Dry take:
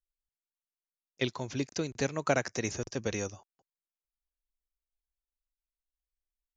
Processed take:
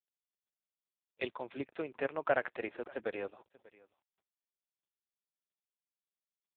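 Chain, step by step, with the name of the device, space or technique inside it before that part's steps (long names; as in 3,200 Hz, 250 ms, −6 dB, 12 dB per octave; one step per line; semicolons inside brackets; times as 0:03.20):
satellite phone (band-pass filter 390–3,100 Hz; single-tap delay 588 ms −22 dB; AMR narrowband 4.75 kbit/s 8,000 Hz)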